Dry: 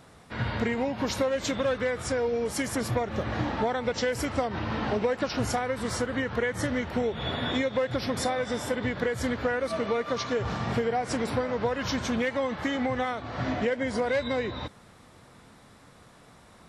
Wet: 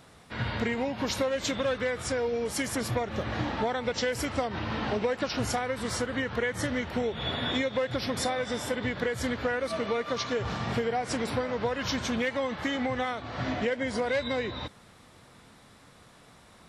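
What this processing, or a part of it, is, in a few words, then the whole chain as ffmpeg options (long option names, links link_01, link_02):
presence and air boost: -af "equalizer=frequency=3300:width_type=o:width=1.6:gain=3.5,highshelf=frequency=9500:gain=4,volume=-2dB"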